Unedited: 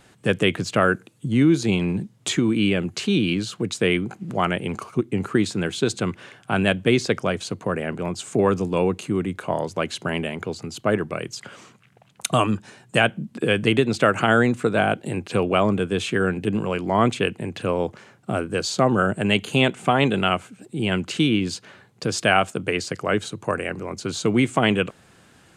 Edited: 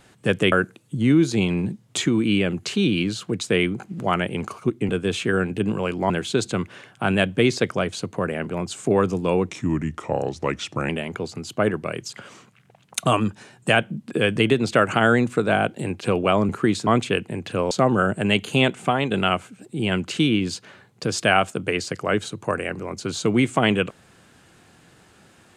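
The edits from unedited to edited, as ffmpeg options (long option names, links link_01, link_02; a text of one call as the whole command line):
ffmpeg -i in.wav -filter_complex "[0:a]asplit=10[link_01][link_02][link_03][link_04][link_05][link_06][link_07][link_08][link_09][link_10];[link_01]atrim=end=0.522[link_11];[link_02]atrim=start=0.828:end=5.202[link_12];[link_03]atrim=start=15.758:end=16.972[link_13];[link_04]atrim=start=5.578:end=8.974[link_14];[link_05]atrim=start=8.97:end=10.16,asetpts=PTS-STARTPTS,asetrate=37485,aresample=44100[link_15];[link_06]atrim=start=10.156:end=15.762[link_16];[link_07]atrim=start=5.198:end=5.582[link_17];[link_08]atrim=start=16.968:end=17.812[link_18];[link_09]atrim=start=18.708:end=20.11,asetpts=PTS-STARTPTS,afade=type=out:start_time=1.102:duration=0.3:silence=0.421697[link_19];[link_10]atrim=start=20.11,asetpts=PTS-STARTPTS,afade=type=in:duration=0.004:curve=hsin:silence=0.421697[link_20];[link_11][link_12]acrossfade=duration=0.004:curve1=hsin:curve2=hsin[link_21];[link_21][link_13]acrossfade=duration=0.004:curve1=hsin:curve2=hsin[link_22];[link_22][link_14]acrossfade=duration=0.004:curve1=hsin:curve2=hsin[link_23];[link_23][link_15]acrossfade=duration=0.004:curve1=hsin:curve2=hsin[link_24];[link_24][link_16]acrossfade=duration=0.004:curve1=hsin:curve2=hsin[link_25];[link_25][link_17]acrossfade=duration=0.004:curve1=hsin:curve2=hsin[link_26];[link_26][link_18]acrossfade=duration=0.004:curve1=hsin:curve2=hsin[link_27];[link_19][link_20]concat=n=2:v=0:a=1[link_28];[link_27][link_28]acrossfade=duration=0.004:curve1=hsin:curve2=hsin" out.wav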